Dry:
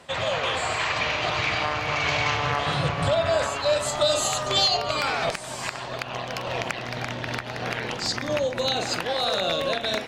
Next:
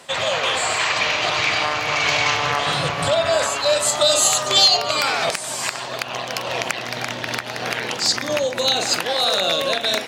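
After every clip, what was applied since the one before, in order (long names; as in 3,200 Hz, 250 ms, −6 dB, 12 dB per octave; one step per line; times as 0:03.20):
high-pass filter 220 Hz 6 dB per octave
high-shelf EQ 5,000 Hz +10 dB
level +4 dB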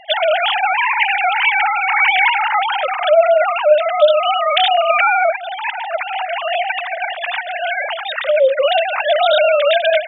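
three sine waves on the formant tracks
in parallel at +3 dB: compressor whose output falls as the input rises −21 dBFS, ratio −0.5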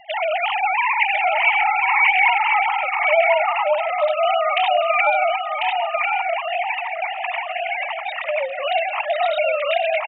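phaser with its sweep stopped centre 2,300 Hz, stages 8
single-tap delay 1,045 ms −4 dB
level −2 dB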